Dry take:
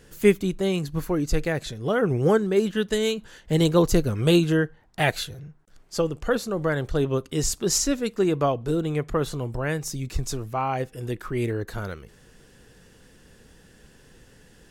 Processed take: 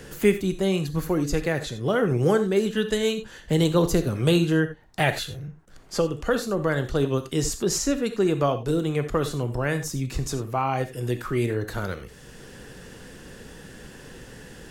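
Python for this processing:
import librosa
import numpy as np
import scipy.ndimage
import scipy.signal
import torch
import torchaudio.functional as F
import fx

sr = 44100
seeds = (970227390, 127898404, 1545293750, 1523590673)

y = fx.rev_gated(x, sr, seeds[0], gate_ms=110, shape='flat', drr_db=9.0)
y = fx.band_squash(y, sr, depth_pct=40)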